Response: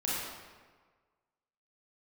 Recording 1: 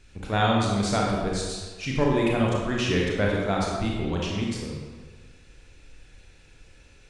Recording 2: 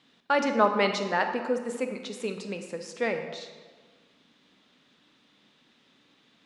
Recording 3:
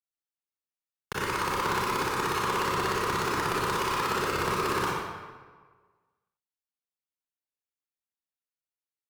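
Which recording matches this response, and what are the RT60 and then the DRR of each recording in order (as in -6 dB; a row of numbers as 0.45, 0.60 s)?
3; 1.5, 1.5, 1.5 s; -3.0, 6.0, -7.5 dB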